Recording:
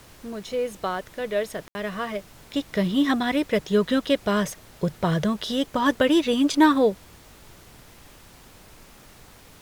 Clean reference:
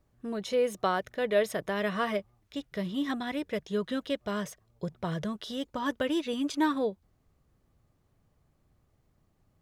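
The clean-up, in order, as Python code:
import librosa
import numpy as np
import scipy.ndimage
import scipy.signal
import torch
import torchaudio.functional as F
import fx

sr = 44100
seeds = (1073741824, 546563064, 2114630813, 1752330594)

y = fx.fix_ambience(x, sr, seeds[0], print_start_s=9.1, print_end_s=9.6, start_s=1.68, end_s=1.75)
y = fx.noise_reduce(y, sr, print_start_s=9.1, print_end_s=9.6, reduce_db=20.0)
y = fx.fix_level(y, sr, at_s=2.34, step_db=-10.0)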